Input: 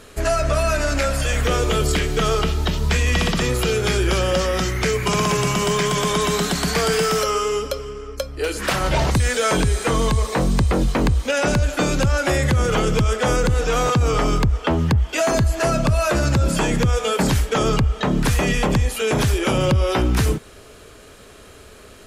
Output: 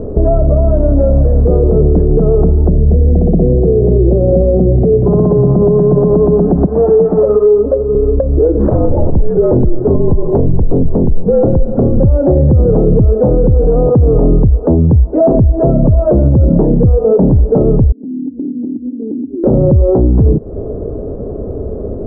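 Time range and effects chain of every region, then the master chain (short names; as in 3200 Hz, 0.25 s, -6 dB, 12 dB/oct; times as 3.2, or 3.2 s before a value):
2.69–5.04 band shelf 1200 Hz -14.5 dB 1.1 oct + echo 0.186 s -11.5 dB
6.66–7.95 self-modulated delay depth 0.15 ms + tone controls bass -8 dB, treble +13 dB + ensemble effect
8.69–12 frequency shift -58 Hz + echo 0.217 s -17 dB
17.92–19.44 Butterworth band-pass 270 Hz, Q 4.5 + compressor 16:1, threshold -41 dBFS
whole clip: inverse Chebyshev low-pass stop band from 3300 Hz, stop band 80 dB; compressor 4:1, threshold -31 dBFS; maximiser +26.5 dB; gain -1 dB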